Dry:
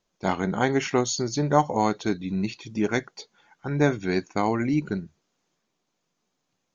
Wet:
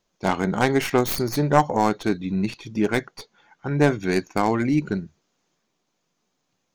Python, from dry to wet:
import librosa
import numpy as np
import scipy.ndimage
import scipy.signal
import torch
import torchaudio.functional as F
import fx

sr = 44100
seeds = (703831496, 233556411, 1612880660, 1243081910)

y = fx.tracing_dist(x, sr, depth_ms=0.17)
y = fx.high_shelf(y, sr, hz=6000.0, db=-6.5, at=(1.5, 4.0))
y = y * librosa.db_to_amplitude(3.0)